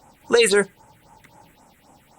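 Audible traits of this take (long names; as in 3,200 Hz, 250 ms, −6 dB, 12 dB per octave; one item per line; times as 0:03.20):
phaser sweep stages 4, 3.8 Hz, lowest notch 790–4,400 Hz
Opus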